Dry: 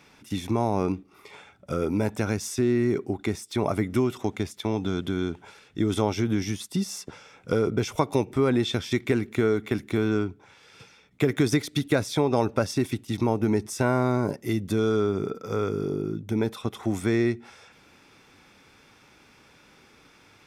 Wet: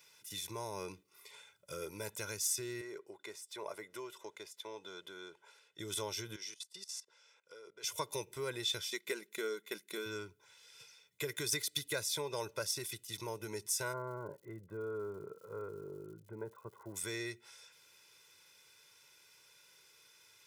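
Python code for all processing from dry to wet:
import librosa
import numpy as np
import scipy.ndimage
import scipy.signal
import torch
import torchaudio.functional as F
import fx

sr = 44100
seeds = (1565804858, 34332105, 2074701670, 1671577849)

y = fx.chain(x, sr, fx.highpass(hz=560.0, slope=12),
    fx.tilt_eq(slope=-3.5), at=(2.81, 5.79))
y = fx.chain(y, sr, fx.highpass(hz=400.0, slope=12),
    fx.level_steps(step_db=19),
    fx.air_absorb(metres=62.0), at=(6.36, 7.84))
y = fx.chain(y, sr, fx.transient(attack_db=3, sustain_db=-6),
    fx.brickwall_highpass(low_hz=160.0), at=(8.9, 10.06))
y = fx.cheby2_lowpass(y, sr, hz=5900.0, order=4, stop_db=70, at=(13.92, 16.95), fade=0.02)
y = fx.dmg_crackle(y, sr, seeds[0], per_s=150.0, level_db=-53.0, at=(13.92, 16.95), fade=0.02)
y = scipy.signal.sosfilt(scipy.signal.butter(2, 110.0, 'highpass', fs=sr, output='sos'), y)
y = scipy.signal.lfilter([1.0, -0.9], [1.0], y)
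y = y + 0.83 * np.pad(y, (int(2.0 * sr / 1000.0), 0))[:len(y)]
y = F.gain(torch.from_numpy(y), -1.0).numpy()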